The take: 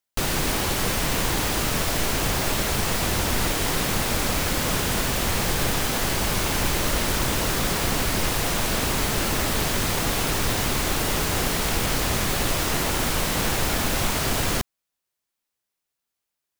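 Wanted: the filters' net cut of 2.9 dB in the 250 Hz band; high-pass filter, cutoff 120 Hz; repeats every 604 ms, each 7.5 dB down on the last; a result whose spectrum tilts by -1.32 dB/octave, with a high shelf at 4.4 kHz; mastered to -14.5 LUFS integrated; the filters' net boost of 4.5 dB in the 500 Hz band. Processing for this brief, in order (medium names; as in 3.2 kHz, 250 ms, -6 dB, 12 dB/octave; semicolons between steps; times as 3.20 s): high-pass 120 Hz; peaking EQ 250 Hz -6 dB; peaking EQ 500 Hz +7 dB; treble shelf 4.4 kHz +9 dB; feedback delay 604 ms, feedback 42%, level -7.5 dB; trim +3 dB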